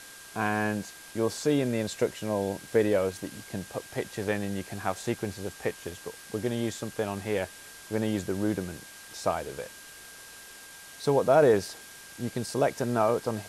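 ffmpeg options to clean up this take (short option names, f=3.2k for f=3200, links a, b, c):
-af "adeclick=t=4,bandreject=f=1.6k:w=30,afwtdn=0.005"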